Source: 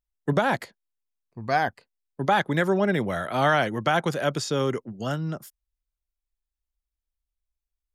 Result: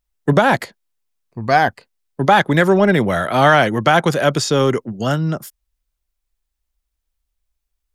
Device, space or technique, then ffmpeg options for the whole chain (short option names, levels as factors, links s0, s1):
parallel distortion: -filter_complex "[0:a]asplit=2[s0][s1];[s1]asoftclip=type=hard:threshold=0.0562,volume=0.2[s2];[s0][s2]amix=inputs=2:normalize=0,volume=2.66"